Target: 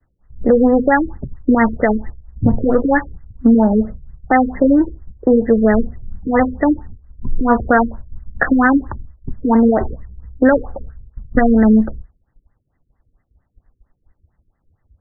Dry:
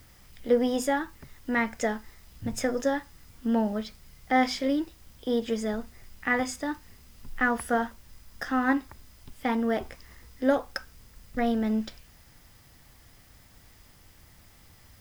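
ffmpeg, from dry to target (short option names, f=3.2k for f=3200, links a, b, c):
-filter_complex "[0:a]agate=range=-33dB:threshold=-44dB:ratio=3:detection=peak,afftdn=nr=18:nf=-48,acrossover=split=110|1300[a][b][c];[b]acompressor=threshold=-32dB:ratio=4[d];[c]acompressor=threshold=-33dB:ratio=4[e];[a][d][e]amix=inputs=3:normalize=0,alimiter=level_in=23.5dB:limit=-1dB:release=50:level=0:latency=1,afftfilt=real='re*lt(b*sr/1024,470*pow(2100/470,0.5+0.5*sin(2*PI*4.4*pts/sr)))':imag='im*lt(b*sr/1024,470*pow(2100/470,0.5+0.5*sin(2*PI*4.4*pts/sr)))':win_size=1024:overlap=0.75,volume=-1dB"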